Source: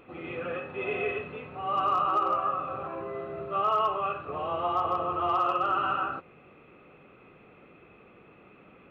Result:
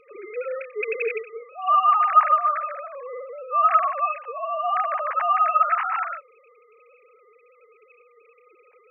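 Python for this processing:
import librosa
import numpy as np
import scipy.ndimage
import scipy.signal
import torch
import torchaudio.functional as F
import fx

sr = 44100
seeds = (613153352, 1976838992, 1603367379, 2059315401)

y = fx.sine_speech(x, sr)
y = F.gain(torch.from_numpy(y), 6.5).numpy()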